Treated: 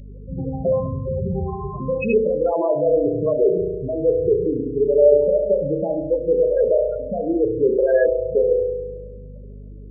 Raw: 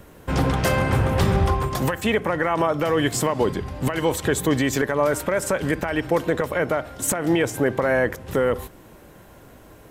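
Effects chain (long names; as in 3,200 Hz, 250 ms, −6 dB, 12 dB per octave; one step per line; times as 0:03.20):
expanding power law on the bin magnitudes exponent 2.8
loudspeaker in its box 120–4,400 Hz, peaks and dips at 120 Hz −5 dB, 280 Hz −7 dB, 420 Hz +7 dB, 610 Hz +5 dB, 1,200 Hz −9 dB, 1,900 Hz −6 dB
convolution reverb RT60 1.4 s, pre-delay 34 ms, DRR 1 dB
mains hum 50 Hz, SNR 19 dB
spectral peaks only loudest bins 16
high shelf with overshoot 1,600 Hz +12.5 dB, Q 1.5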